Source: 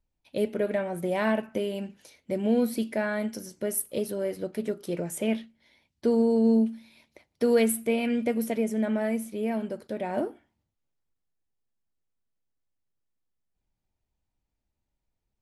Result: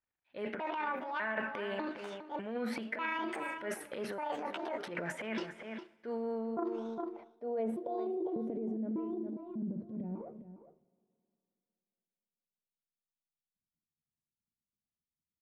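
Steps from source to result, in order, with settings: pitch shift switched off and on +7.5 st, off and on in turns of 597 ms; gate -56 dBFS, range -13 dB; transient shaper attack -9 dB, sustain +10 dB; on a send at -23 dB: reverberation RT60 2.9 s, pre-delay 46 ms; on the sum: low-pass sweep 1.7 kHz -> 200 Hz, 6.17–9.47 s; tilt EQ +3.5 dB/octave; echo from a far wall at 70 m, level -13 dB; reverse; compression 4:1, threshold -38 dBFS, peak gain reduction 16 dB; reverse; trim +2.5 dB

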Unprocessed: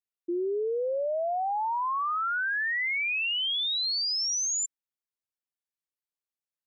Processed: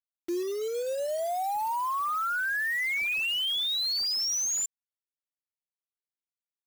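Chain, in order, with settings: reverb removal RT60 1.9 s; bit crusher 7-bit

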